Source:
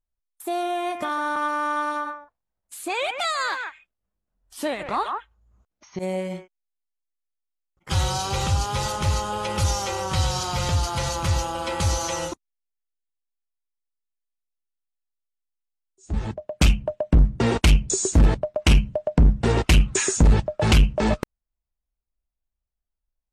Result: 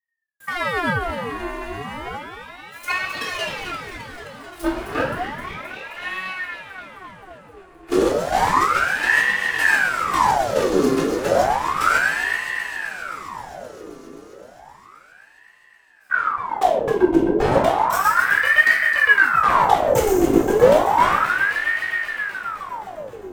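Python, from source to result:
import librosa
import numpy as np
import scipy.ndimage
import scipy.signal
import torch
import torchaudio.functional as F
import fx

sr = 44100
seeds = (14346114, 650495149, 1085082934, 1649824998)

p1 = fx.lower_of_two(x, sr, delay_ms=2.8)
p2 = fx.peak_eq(p1, sr, hz=4500.0, db=-6.5, octaves=2.1)
p3 = fx.over_compress(p2, sr, threshold_db=-22.0, ratio=-1.0)
p4 = p2 + (p3 * librosa.db_to_amplitude(-1.0))
p5 = fx.leveller(p4, sr, passes=2)
p6 = fx.level_steps(p5, sr, step_db=14)
p7 = p6 + fx.echo_alternate(p6, sr, ms=131, hz=860.0, feedback_pct=88, wet_db=-7.0, dry=0)
p8 = fx.room_shoebox(p7, sr, seeds[0], volume_m3=580.0, walls='furnished', distance_m=4.1)
p9 = fx.ring_lfo(p8, sr, carrier_hz=1100.0, swing_pct=70, hz=0.32)
y = p9 * librosa.db_to_amplitude(-9.0)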